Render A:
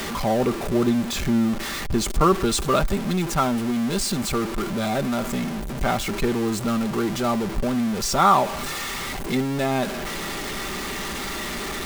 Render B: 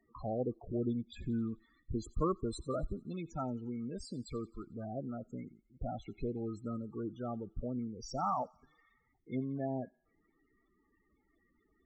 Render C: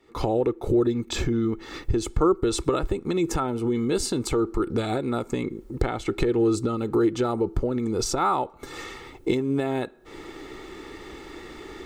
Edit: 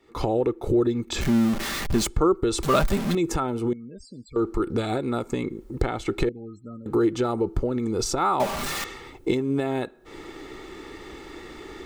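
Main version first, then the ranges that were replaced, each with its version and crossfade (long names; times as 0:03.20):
C
0:01.21–0:02.07: punch in from A
0:02.63–0:03.15: punch in from A
0:03.73–0:04.36: punch in from B
0:06.29–0:06.86: punch in from B
0:08.40–0:08.84: punch in from A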